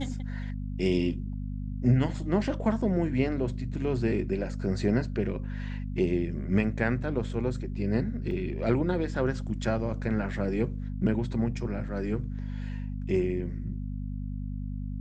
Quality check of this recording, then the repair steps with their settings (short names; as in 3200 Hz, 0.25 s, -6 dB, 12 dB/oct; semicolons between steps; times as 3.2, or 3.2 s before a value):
hum 50 Hz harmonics 5 -34 dBFS
8.31 gap 2.1 ms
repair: de-hum 50 Hz, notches 5; interpolate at 8.31, 2.1 ms